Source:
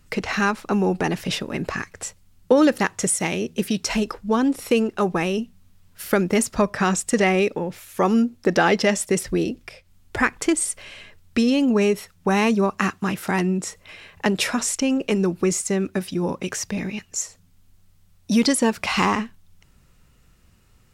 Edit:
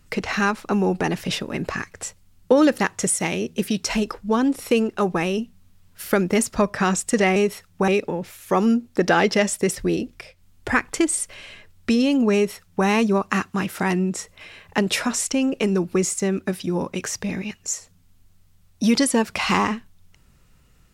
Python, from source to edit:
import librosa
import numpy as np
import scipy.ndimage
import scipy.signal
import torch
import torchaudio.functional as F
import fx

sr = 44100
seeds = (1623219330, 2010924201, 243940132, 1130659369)

y = fx.edit(x, sr, fx.duplicate(start_s=11.82, length_s=0.52, to_s=7.36), tone=tone)